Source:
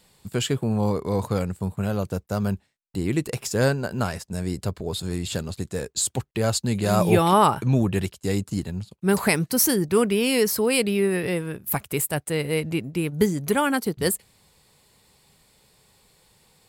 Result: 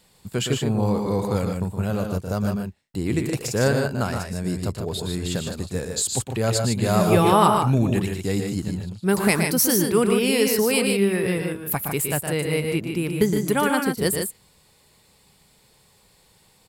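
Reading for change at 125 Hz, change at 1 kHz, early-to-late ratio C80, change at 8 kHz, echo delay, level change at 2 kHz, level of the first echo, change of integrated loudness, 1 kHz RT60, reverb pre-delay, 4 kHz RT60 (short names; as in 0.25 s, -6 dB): +1.5 dB, +1.5 dB, none, +1.5 dB, 0.116 s, +1.5 dB, -7.0 dB, +1.5 dB, none, none, none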